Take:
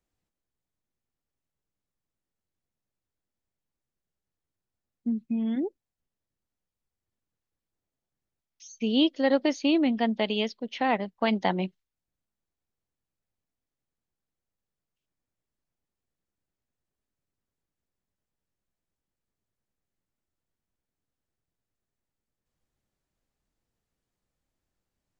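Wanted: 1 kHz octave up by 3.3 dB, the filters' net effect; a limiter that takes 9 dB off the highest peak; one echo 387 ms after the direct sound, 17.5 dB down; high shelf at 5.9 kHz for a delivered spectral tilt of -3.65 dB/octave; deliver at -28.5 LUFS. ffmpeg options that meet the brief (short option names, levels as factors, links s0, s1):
-af "equalizer=f=1000:t=o:g=4.5,highshelf=f=5900:g=6.5,alimiter=limit=0.126:level=0:latency=1,aecho=1:1:387:0.133,volume=1.12"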